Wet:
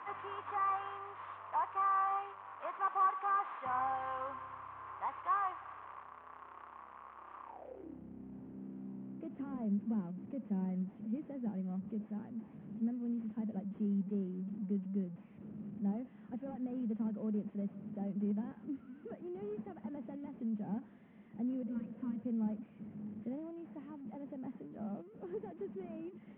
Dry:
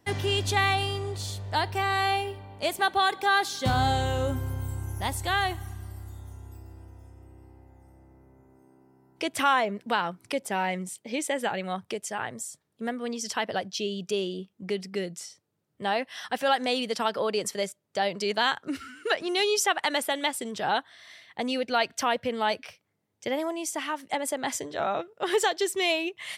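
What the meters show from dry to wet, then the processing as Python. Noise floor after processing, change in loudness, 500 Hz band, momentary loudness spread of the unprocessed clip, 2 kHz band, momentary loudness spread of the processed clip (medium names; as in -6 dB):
-57 dBFS, -11.5 dB, -18.0 dB, 12 LU, -21.0 dB, 15 LU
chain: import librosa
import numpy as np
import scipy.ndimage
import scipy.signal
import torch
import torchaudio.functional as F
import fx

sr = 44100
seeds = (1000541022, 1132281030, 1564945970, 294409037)

y = fx.delta_mod(x, sr, bps=16000, step_db=-33.5)
y = fx.spec_repair(y, sr, seeds[0], start_s=21.69, length_s=0.47, low_hz=360.0, high_hz=940.0, source='both')
y = fx.filter_sweep_bandpass(y, sr, from_hz=1100.0, to_hz=210.0, start_s=7.44, end_s=8.02, q=7.3)
y = y * 10.0 ** (4.5 / 20.0)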